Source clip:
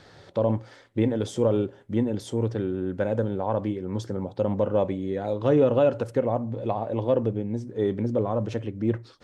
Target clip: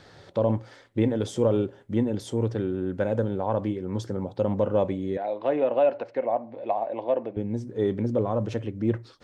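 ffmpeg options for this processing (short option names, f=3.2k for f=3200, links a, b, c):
-filter_complex "[0:a]asettb=1/sr,asplit=3[a][b][c];[a]atrim=end=5.174[d];[b]atrim=start=5.17:end=7.37,asetpts=PTS-STARTPTS,afade=t=in:d=0.004:c=qsin,afade=t=out:st=2.196:d=0.004:c=qsin,highpass=410,equalizer=f=440:t=q:w=4:g=-6,equalizer=f=680:t=q:w=4:g=6,equalizer=f=1.3k:t=q:w=4:g=-7,equalizer=f=2.2k:t=q:w=4:g=4,equalizer=f=3.3k:t=q:w=4:g=-7,lowpass=f=4.1k:w=0.5412,lowpass=f=4.1k:w=1.3066[e];[c]atrim=start=7.366[f];[d][e]acrossfade=d=0.004:c1=hsin:c2=qsin[g];[g][f]acrossfade=d=0.004:c1=qsin:c2=hsin"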